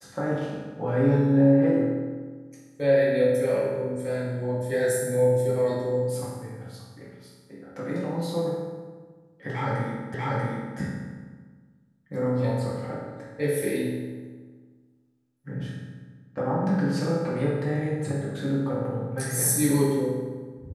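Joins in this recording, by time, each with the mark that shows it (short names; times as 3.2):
10.14 repeat of the last 0.64 s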